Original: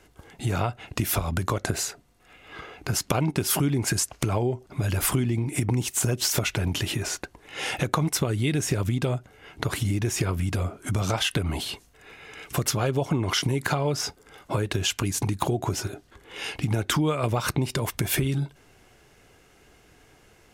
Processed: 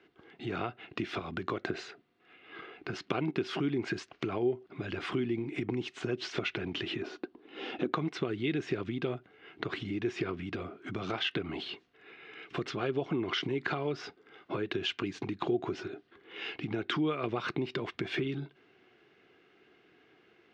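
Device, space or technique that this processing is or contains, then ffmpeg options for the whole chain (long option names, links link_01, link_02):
kitchen radio: -filter_complex "[0:a]highpass=220,equalizer=frequency=360:width_type=q:width=4:gain=6,equalizer=frequency=570:width_type=q:width=4:gain=-7,equalizer=frequency=910:width_type=q:width=4:gain=-7,lowpass=frequency=3700:width=0.5412,lowpass=frequency=3700:width=1.3066,asettb=1/sr,asplit=3[link_01][link_02][link_03];[link_01]atrim=end=7.024[link_04];[link_02]atrim=start=7.02:end=7.92,asetpts=PTS-STARTPTS,afade=type=in:duration=0.004:curve=qsin,afade=type=out:start_time=0.896:duration=0.004:curve=qsin,equalizer=frequency=125:width_type=o:width=1:gain=-10,equalizer=frequency=250:width_type=o:width=1:gain=10,equalizer=frequency=2000:width_type=o:width=1:gain=-9,equalizer=frequency=8000:width_type=o:width=1:gain=-9[link_05];[link_03]atrim=start=7.916[link_06];[link_04][link_05]acrossfade=duration=0.004:curve1=hsin:curve2=qsin[link_07];[link_07][link_06]acrossfade=duration=0.004:curve1=qsin:curve2=hsin,volume=-5dB"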